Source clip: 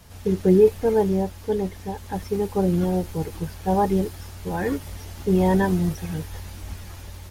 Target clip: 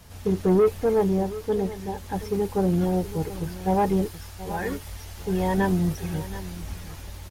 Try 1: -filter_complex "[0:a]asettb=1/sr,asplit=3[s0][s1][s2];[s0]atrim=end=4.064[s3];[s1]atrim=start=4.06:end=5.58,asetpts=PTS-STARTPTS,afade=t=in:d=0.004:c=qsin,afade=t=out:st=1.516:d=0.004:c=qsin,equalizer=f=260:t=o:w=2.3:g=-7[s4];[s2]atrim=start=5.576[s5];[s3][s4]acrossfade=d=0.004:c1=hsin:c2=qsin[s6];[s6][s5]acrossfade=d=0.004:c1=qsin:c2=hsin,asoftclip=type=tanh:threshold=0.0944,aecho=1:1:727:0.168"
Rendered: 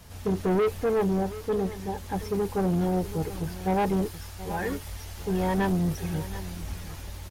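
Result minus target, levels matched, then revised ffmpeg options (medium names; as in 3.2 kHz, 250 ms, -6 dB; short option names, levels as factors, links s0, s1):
saturation: distortion +6 dB
-filter_complex "[0:a]asettb=1/sr,asplit=3[s0][s1][s2];[s0]atrim=end=4.064[s3];[s1]atrim=start=4.06:end=5.58,asetpts=PTS-STARTPTS,afade=t=in:d=0.004:c=qsin,afade=t=out:st=1.516:d=0.004:c=qsin,equalizer=f=260:t=o:w=2.3:g=-7[s4];[s2]atrim=start=5.576[s5];[s3][s4]acrossfade=d=0.004:c1=hsin:c2=qsin[s6];[s6][s5]acrossfade=d=0.004:c1=qsin:c2=hsin,asoftclip=type=tanh:threshold=0.211,aecho=1:1:727:0.168"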